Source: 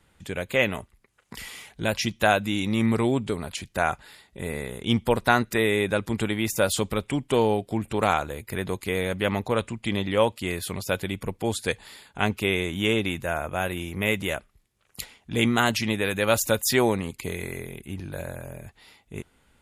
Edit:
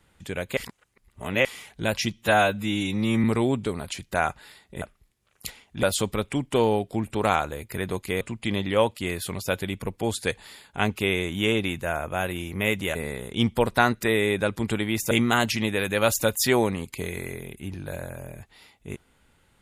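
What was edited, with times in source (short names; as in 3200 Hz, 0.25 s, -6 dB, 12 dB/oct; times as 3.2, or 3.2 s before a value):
0.57–1.45 reverse
2.13–2.87 stretch 1.5×
4.45–6.61 swap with 14.36–15.37
8.99–9.62 cut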